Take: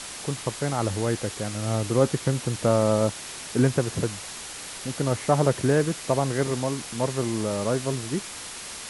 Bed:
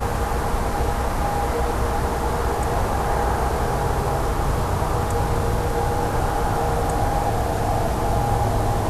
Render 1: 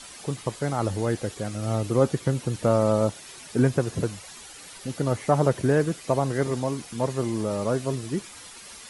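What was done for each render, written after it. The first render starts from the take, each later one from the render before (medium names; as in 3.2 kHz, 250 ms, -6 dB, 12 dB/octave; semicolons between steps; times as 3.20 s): noise reduction 10 dB, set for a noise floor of -38 dBFS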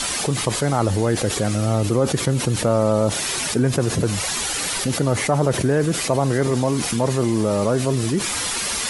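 level flattener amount 70%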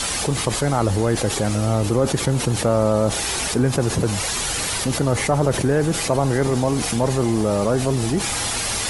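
add bed -13 dB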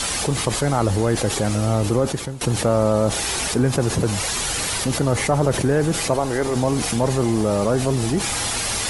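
1.96–2.41 s: fade out, to -19 dB; 6.14–6.56 s: peaking EQ 150 Hz -11 dB 0.99 oct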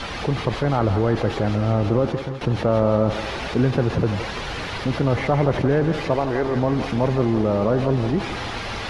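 distance through air 280 m; thinning echo 168 ms, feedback 65%, high-pass 470 Hz, level -8 dB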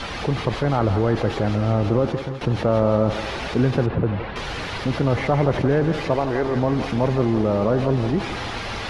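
3.86–4.36 s: distance through air 400 m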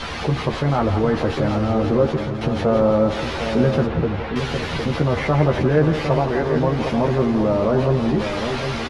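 doubling 13 ms -4 dB; echo from a far wall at 130 m, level -7 dB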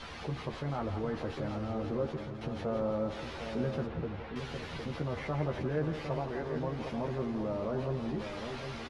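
trim -16 dB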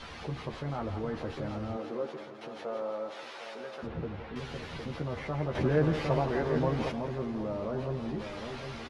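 1.76–3.82 s: high-pass 270 Hz -> 700 Hz; 5.55–6.92 s: gain +6.5 dB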